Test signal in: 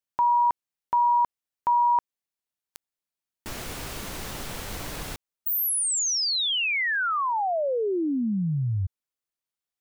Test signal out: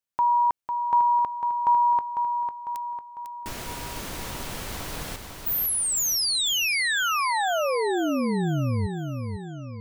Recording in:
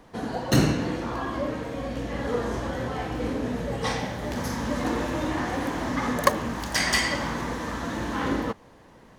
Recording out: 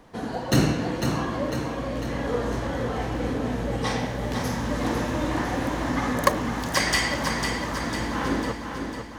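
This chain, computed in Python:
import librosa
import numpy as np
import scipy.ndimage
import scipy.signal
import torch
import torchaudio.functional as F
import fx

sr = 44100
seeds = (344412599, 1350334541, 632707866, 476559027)

y = fx.echo_feedback(x, sr, ms=500, feedback_pct=53, wet_db=-6.5)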